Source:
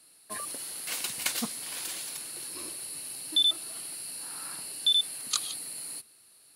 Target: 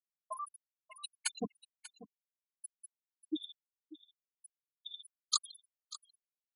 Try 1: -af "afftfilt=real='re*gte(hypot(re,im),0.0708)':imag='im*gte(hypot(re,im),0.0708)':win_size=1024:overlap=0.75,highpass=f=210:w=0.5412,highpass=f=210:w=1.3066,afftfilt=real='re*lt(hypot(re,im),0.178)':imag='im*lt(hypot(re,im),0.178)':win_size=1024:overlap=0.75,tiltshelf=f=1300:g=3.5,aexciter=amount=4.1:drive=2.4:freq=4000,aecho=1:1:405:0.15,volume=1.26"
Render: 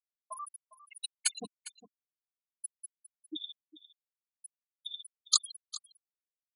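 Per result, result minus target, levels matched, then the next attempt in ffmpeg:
1 kHz band -6.5 dB; echo 185 ms early
-af "afftfilt=real='re*gte(hypot(re,im),0.0708)':imag='im*gte(hypot(re,im),0.0708)':win_size=1024:overlap=0.75,highpass=f=210:w=0.5412,highpass=f=210:w=1.3066,afftfilt=real='re*lt(hypot(re,im),0.178)':imag='im*lt(hypot(re,im),0.178)':win_size=1024:overlap=0.75,tiltshelf=f=1300:g=11,aexciter=amount=4.1:drive=2.4:freq=4000,aecho=1:1:405:0.15,volume=1.26"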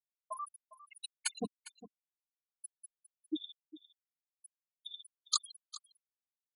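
echo 185 ms early
-af "afftfilt=real='re*gte(hypot(re,im),0.0708)':imag='im*gte(hypot(re,im),0.0708)':win_size=1024:overlap=0.75,highpass=f=210:w=0.5412,highpass=f=210:w=1.3066,afftfilt=real='re*lt(hypot(re,im),0.178)':imag='im*lt(hypot(re,im),0.178)':win_size=1024:overlap=0.75,tiltshelf=f=1300:g=11,aexciter=amount=4.1:drive=2.4:freq=4000,aecho=1:1:590:0.15,volume=1.26"

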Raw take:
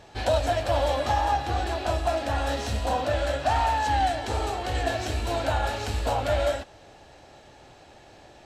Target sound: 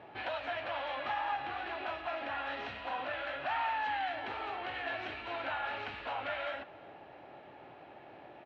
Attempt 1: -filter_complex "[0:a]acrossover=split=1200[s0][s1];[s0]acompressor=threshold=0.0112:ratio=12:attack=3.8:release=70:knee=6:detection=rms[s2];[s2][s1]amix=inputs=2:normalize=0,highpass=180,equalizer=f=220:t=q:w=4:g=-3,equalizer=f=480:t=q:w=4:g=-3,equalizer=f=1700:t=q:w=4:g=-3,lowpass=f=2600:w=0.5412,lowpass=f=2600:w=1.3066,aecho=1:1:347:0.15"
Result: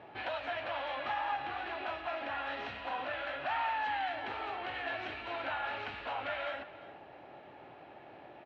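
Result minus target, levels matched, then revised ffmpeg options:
echo-to-direct +7 dB
-filter_complex "[0:a]acrossover=split=1200[s0][s1];[s0]acompressor=threshold=0.0112:ratio=12:attack=3.8:release=70:knee=6:detection=rms[s2];[s2][s1]amix=inputs=2:normalize=0,highpass=180,equalizer=f=220:t=q:w=4:g=-3,equalizer=f=480:t=q:w=4:g=-3,equalizer=f=1700:t=q:w=4:g=-3,lowpass=f=2600:w=0.5412,lowpass=f=2600:w=1.3066,aecho=1:1:347:0.0668"

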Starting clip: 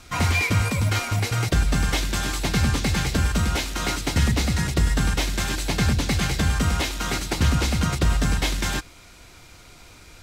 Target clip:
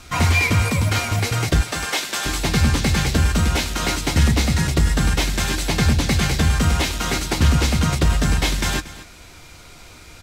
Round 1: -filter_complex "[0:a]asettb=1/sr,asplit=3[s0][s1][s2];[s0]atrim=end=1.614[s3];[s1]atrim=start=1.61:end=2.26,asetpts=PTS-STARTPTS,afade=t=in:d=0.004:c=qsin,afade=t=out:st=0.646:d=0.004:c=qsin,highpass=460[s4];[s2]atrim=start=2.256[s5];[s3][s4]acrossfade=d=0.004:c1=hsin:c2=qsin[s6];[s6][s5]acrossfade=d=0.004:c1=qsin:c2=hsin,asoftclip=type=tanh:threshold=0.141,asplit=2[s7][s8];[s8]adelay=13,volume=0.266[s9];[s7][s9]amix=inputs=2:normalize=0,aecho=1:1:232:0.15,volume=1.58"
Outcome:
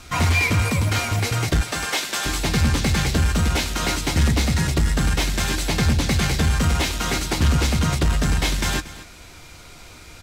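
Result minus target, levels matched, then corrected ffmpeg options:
saturation: distortion +11 dB
-filter_complex "[0:a]asettb=1/sr,asplit=3[s0][s1][s2];[s0]atrim=end=1.614[s3];[s1]atrim=start=1.61:end=2.26,asetpts=PTS-STARTPTS,afade=t=in:d=0.004:c=qsin,afade=t=out:st=0.646:d=0.004:c=qsin,highpass=460[s4];[s2]atrim=start=2.256[s5];[s3][s4]acrossfade=d=0.004:c1=hsin:c2=qsin[s6];[s6][s5]acrossfade=d=0.004:c1=qsin:c2=hsin,asoftclip=type=tanh:threshold=0.316,asplit=2[s7][s8];[s8]adelay=13,volume=0.266[s9];[s7][s9]amix=inputs=2:normalize=0,aecho=1:1:232:0.15,volume=1.58"

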